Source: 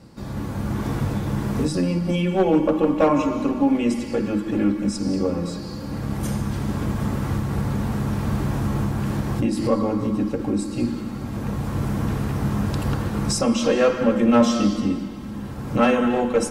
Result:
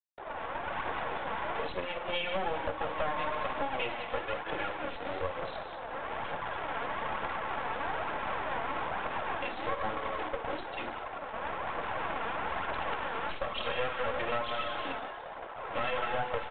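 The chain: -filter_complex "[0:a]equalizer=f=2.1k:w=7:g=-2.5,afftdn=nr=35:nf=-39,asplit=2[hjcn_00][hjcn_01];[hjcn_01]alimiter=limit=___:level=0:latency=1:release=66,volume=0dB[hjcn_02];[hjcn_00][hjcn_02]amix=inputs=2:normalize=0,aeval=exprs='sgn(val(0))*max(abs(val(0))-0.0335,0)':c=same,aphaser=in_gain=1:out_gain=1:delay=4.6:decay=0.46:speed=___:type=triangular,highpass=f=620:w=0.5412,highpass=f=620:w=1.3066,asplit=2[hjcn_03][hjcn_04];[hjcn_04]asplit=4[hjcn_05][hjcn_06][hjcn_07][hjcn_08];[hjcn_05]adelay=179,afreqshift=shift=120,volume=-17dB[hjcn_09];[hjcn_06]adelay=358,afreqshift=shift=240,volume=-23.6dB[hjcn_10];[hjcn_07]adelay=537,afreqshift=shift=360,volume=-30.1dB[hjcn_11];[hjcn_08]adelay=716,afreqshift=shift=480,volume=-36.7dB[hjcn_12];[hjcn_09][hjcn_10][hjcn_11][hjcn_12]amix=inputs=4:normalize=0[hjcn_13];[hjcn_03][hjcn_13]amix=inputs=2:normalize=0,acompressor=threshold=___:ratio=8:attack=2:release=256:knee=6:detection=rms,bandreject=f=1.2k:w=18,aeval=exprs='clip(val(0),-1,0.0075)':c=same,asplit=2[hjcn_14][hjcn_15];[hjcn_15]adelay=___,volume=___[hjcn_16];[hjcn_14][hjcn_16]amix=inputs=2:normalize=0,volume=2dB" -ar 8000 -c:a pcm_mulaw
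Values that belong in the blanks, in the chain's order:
-12.5dB, 1.1, -25dB, 46, -13.5dB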